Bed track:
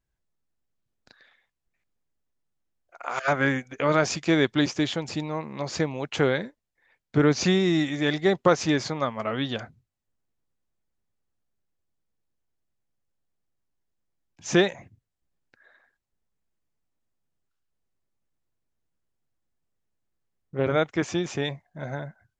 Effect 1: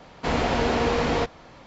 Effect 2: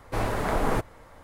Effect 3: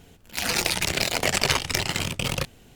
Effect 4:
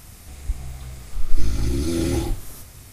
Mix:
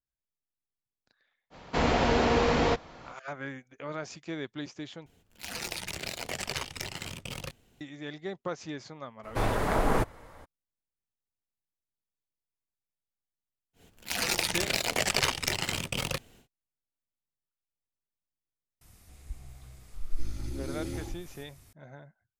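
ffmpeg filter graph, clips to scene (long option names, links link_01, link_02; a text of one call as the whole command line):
ffmpeg -i bed.wav -i cue0.wav -i cue1.wav -i cue2.wav -i cue3.wav -filter_complex "[3:a]asplit=2[link_01][link_02];[0:a]volume=-15.5dB[link_03];[link_02]equalizer=frequency=69:width=0.42:gain=-3.5[link_04];[link_03]asplit=2[link_05][link_06];[link_05]atrim=end=5.064[link_07];[link_01]atrim=end=2.75,asetpts=PTS-STARTPTS,volume=-12.5dB[link_08];[link_06]atrim=start=7.806[link_09];[1:a]atrim=end=1.66,asetpts=PTS-STARTPTS,volume=-1.5dB,afade=type=in:duration=0.05,afade=type=out:start_time=1.61:duration=0.05,adelay=1500[link_10];[2:a]atrim=end=1.23,asetpts=PTS-STARTPTS,volume=-0.5dB,afade=type=in:duration=0.02,afade=type=out:start_time=1.21:duration=0.02,adelay=9230[link_11];[link_04]atrim=end=2.75,asetpts=PTS-STARTPTS,volume=-4.5dB,afade=type=in:duration=0.1,afade=type=out:start_time=2.65:duration=0.1,adelay=13730[link_12];[4:a]atrim=end=2.92,asetpts=PTS-STARTPTS,volume=-14dB,afade=type=in:duration=0.004:curve=hsin,afade=type=out:start_time=2.916:duration=0.004:curve=hsin,adelay=18810[link_13];[link_07][link_08]acrossfade=duration=0.004:curve1=hsin:curve2=hsin[link_14];[link_14][link_09]acrossfade=duration=0.004:curve1=hsin:curve2=hsin[link_15];[link_15][link_10][link_11][link_12][link_13]amix=inputs=5:normalize=0" out.wav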